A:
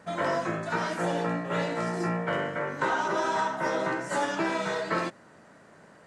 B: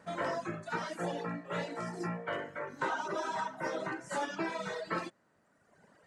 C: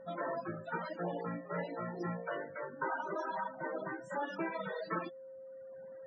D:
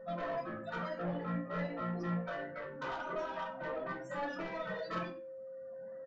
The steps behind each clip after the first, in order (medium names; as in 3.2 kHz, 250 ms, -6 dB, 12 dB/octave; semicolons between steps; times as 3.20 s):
reverb removal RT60 1.5 s; trim -5.5 dB
loudest bins only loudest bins 32; whistle 530 Hz -47 dBFS; gain riding within 3 dB 2 s; trim -2 dB
saturation -35.5 dBFS, distortion -13 dB; reverberation RT60 0.35 s, pre-delay 3 ms, DRR 0.5 dB; resampled via 16 kHz; trim -1 dB